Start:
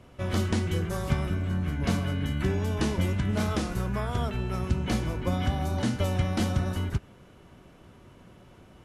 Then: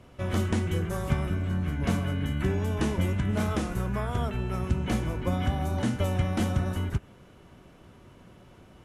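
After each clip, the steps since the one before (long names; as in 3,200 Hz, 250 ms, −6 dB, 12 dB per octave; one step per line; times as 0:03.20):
dynamic equaliser 4,600 Hz, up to −7 dB, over −56 dBFS, Q 1.8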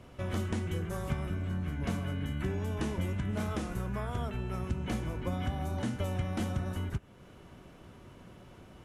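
downward compressor 1.5 to 1, threshold −41 dBFS, peak gain reduction 8 dB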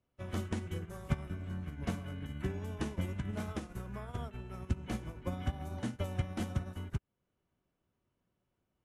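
expander for the loud parts 2.5 to 1, over −49 dBFS
level +2 dB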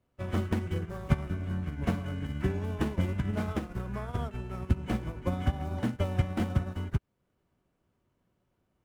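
running median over 9 samples
level +7 dB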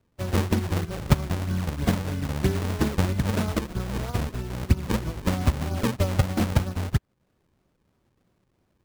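sample-and-hold swept by an LFO 37×, swing 160% 3.1 Hz
level +6 dB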